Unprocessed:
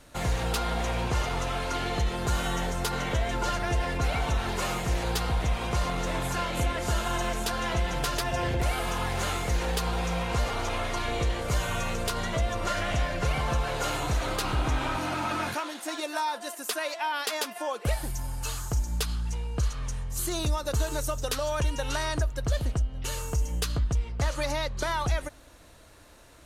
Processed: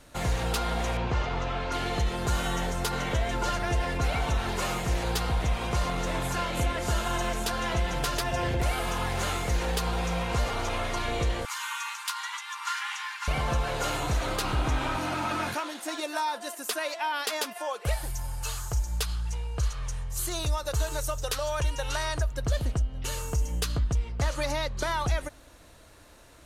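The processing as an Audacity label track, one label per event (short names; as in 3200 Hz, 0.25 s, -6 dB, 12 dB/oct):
0.970000	1.720000	air absorption 140 m
11.450000	13.280000	brick-wall FIR high-pass 800 Hz
17.530000	22.310000	bell 240 Hz -13 dB 0.81 oct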